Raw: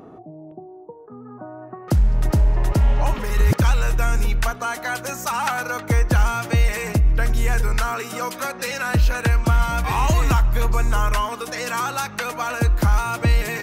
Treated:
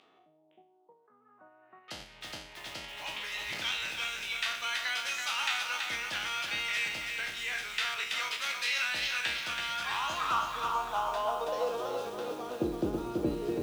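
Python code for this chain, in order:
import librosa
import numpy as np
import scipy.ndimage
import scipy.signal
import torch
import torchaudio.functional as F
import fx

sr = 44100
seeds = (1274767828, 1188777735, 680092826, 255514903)

p1 = fx.spec_trails(x, sr, decay_s=0.56)
p2 = fx.high_shelf_res(p1, sr, hz=2600.0, db=8.0, q=3.0)
p3 = fx.level_steps(p2, sr, step_db=12)
p4 = p2 + (p3 * 10.0 ** (-1.0 / 20.0))
p5 = fx.filter_sweep_bandpass(p4, sr, from_hz=2100.0, to_hz=370.0, start_s=9.55, end_s=12.19, q=4.6)
p6 = fx.echo_crushed(p5, sr, ms=329, feedback_pct=55, bits=8, wet_db=-4.5)
y = p6 * 10.0 ** (-2.5 / 20.0)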